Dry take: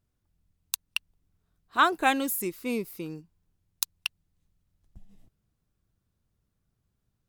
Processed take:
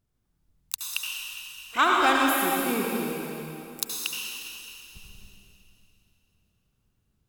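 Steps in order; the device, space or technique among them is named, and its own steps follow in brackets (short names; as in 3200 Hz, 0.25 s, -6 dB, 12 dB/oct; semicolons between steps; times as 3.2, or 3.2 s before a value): shimmer-style reverb (harmoniser +12 st -12 dB; reverb RT60 2.9 s, pre-delay 67 ms, DRR -3 dB); gain -1 dB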